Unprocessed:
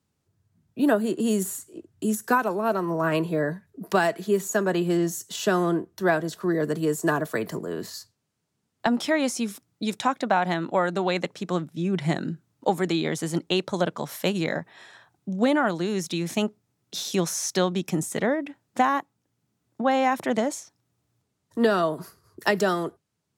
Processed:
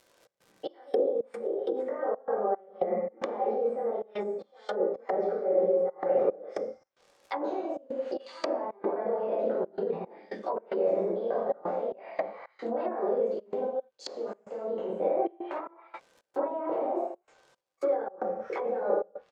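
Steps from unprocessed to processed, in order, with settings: on a send: early reflections 28 ms -7.5 dB, 39 ms -9.5 dB; on the sum: negative-ratio compressor -31 dBFS, ratio -1; varispeed +21%; three-band isolator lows -24 dB, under 470 Hz, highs -19 dB, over 7500 Hz; non-linear reverb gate 0.27 s falling, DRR -8 dB; crackle 150/s -48 dBFS; step gate "xx.xx..xx.xxxx" 112 bpm -24 dB; treble ducked by the level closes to 490 Hz, closed at -28.5 dBFS; bell 550 Hz +11 dB 0.57 oct

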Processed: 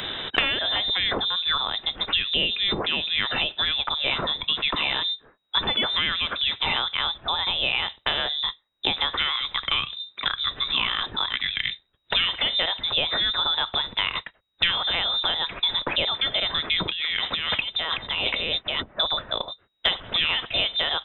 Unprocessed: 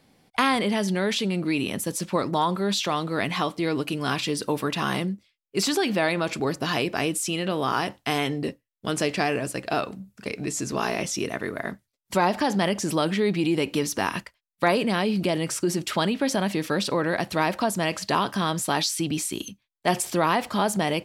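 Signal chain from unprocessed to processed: high shelf 2700 Hz +11.5 dB; 16.89–19 negative-ratio compressor -31 dBFS, ratio -1; inverted band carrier 3800 Hz; three-band squash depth 100%; gain -2 dB

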